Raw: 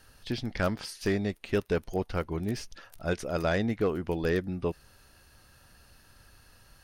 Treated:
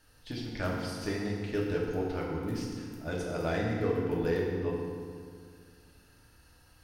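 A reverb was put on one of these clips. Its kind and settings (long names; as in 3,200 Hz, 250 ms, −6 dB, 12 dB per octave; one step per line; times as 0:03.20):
feedback delay network reverb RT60 2 s, low-frequency decay 1.3×, high-frequency decay 0.7×, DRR −3.5 dB
level −8 dB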